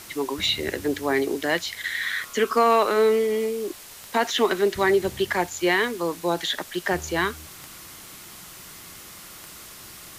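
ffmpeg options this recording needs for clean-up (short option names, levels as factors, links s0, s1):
-af "adeclick=t=4,afftdn=nr=25:nf=-43"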